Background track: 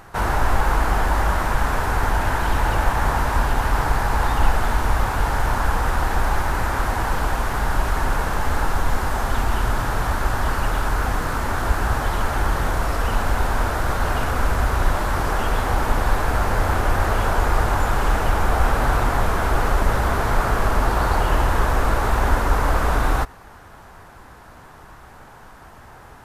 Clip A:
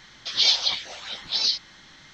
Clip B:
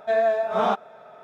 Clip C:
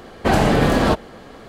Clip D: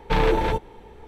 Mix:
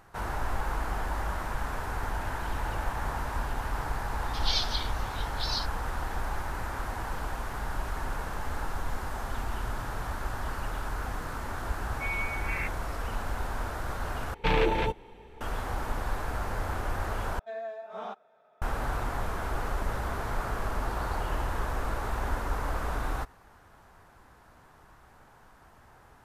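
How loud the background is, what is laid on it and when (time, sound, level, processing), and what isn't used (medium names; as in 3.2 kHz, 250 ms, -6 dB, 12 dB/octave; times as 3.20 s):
background track -12.5 dB
4.08 s: add A -10.5 dB
11.93 s: add B -14 dB + frequency inversion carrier 2.9 kHz
14.34 s: replace with D -5 dB + peaking EQ 2.6 kHz +6 dB 0.72 oct
17.39 s: replace with B -16.5 dB + high-pass 180 Hz 6 dB/octave
not used: C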